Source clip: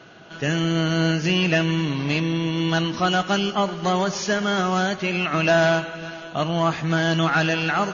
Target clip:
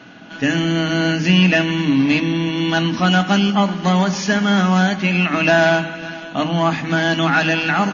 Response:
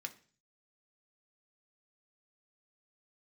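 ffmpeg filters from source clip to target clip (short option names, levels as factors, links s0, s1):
-filter_complex "[0:a]asplit=2[s0][s1];[s1]firequalizer=gain_entry='entry(120,0);entry(290,9);entry(420,-21);entry(780,-2);entry(1200,-13);entry(1700,-5);entry(6000,-20)':delay=0.05:min_phase=1[s2];[1:a]atrim=start_sample=2205,highshelf=f=5200:g=11[s3];[s2][s3]afir=irnorm=-1:irlink=0,volume=2.24[s4];[s0][s4]amix=inputs=2:normalize=0"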